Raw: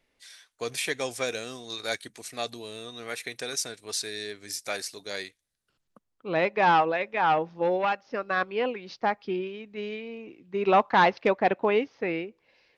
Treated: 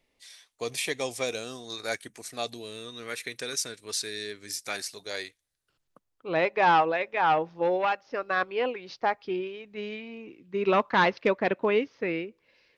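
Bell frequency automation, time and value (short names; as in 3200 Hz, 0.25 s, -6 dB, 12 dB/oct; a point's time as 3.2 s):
bell -9 dB 0.35 oct
1.23 s 1500 Hz
2.11 s 4500 Hz
2.71 s 730 Hz
4.62 s 730 Hz
5.11 s 210 Hz
9.57 s 210 Hz
10.41 s 770 Hz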